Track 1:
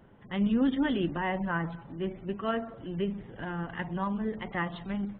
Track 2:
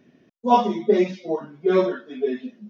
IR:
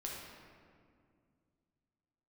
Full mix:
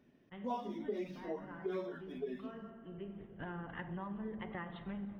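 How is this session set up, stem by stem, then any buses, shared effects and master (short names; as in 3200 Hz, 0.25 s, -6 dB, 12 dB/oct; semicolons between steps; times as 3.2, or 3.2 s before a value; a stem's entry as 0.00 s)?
-6.0 dB, 0.00 s, send -7 dB, gate -42 dBFS, range -13 dB; high shelf 4500 Hz -11 dB; compressor 4:1, threshold -35 dBFS, peak gain reduction 11 dB; auto duck -15 dB, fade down 0.25 s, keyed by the second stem
-12.0 dB, 0.00 s, no send, median filter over 5 samples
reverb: on, RT60 2.2 s, pre-delay 7 ms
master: compressor 4:1, threshold -37 dBFS, peak gain reduction 12.5 dB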